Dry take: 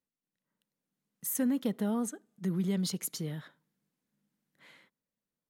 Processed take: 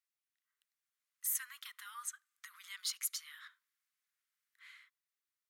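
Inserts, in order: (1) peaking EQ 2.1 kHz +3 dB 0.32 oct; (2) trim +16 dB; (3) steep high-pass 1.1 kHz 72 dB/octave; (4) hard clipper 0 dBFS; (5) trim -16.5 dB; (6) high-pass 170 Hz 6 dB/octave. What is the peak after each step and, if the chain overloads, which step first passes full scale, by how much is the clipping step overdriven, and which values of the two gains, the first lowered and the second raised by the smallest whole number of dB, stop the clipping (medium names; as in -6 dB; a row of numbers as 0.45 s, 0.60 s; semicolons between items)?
-19.5 dBFS, -3.5 dBFS, -5.0 dBFS, -5.0 dBFS, -21.5 dBFS, -21.5 dBFS; nothing clips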